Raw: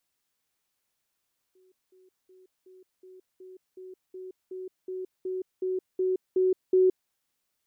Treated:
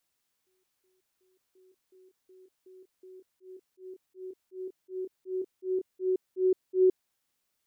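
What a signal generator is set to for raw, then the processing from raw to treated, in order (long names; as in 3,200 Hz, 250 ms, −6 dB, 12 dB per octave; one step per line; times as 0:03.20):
level staircase 372 Hz −59 dBFS, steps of 3 dB, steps 15, 0.17 s 0.20 s
volume swells 101 ms
backwards echo 1,084 ms −14.5 dB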